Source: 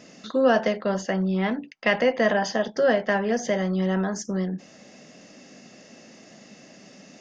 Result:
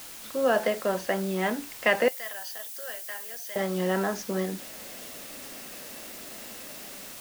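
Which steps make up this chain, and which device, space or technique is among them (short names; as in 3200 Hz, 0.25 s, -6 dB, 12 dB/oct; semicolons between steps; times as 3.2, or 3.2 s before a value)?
dictaphone (BPF 290–4200 Hz; AGC gain up to 11.5 dB; wow and flutter; white noise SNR 15 dB); 2.08–3.56 differentiator; gain -8.5 dB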